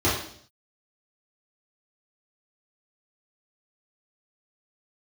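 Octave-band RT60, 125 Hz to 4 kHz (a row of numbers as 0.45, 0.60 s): 0.70, 0.70, 0.65, 0.55, 0.55, 0.65 s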